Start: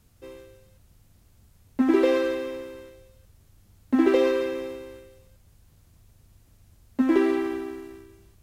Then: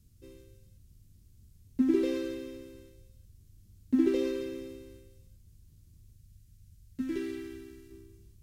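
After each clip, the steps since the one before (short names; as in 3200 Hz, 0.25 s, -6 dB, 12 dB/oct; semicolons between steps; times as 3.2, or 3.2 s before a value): EQ curve 120 Hz 0 dB, 370 Hz -6 dB, 710 Hz -23 dB, 5400 Hz -5 dB; spectral gain 6.16–7.91, 210–1300 Hz -8 dB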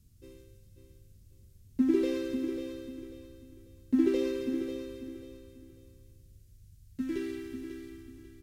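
feedback echo 0.542 s, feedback 28%, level -9 dB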